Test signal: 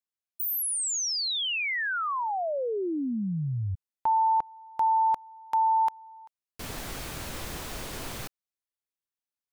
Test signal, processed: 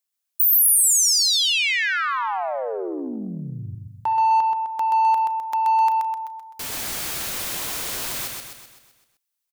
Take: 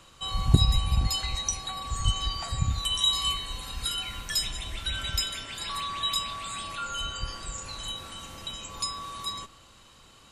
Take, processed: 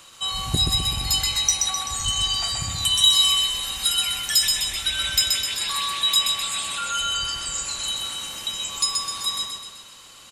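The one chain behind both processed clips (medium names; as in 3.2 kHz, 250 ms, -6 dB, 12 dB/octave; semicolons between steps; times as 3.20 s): feedback delay 128 ms, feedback 52%, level -4 dB; in parallel at -6 dB: saturation -22.5 dBFS; on the sum: tilt EQ +2.5 dB/octave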